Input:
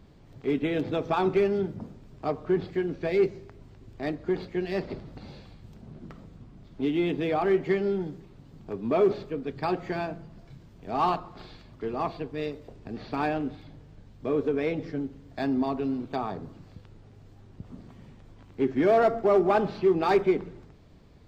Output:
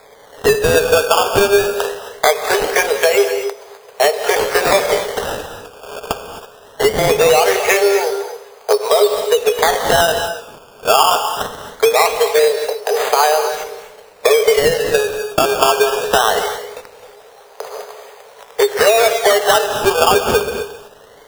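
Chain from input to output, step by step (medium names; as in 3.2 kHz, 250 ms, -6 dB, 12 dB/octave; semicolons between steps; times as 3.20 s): low-pass 1.1 kHz 6 dB/octave; gate -45 dBFS, range -9 dB; Chebyshev high-pass 410 Hz, order 10; tilt EQ +2 dB/octave; compression 12:1, threshold -43 dBFS, peak gain reduction 22.5 dB; decimation with a swept rate 15×, swing 100% 0.21 Hz; gated-style reverb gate 290 ms rising, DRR 8.5 dB; loudness maximiser +34.5 dB; trim -1 dB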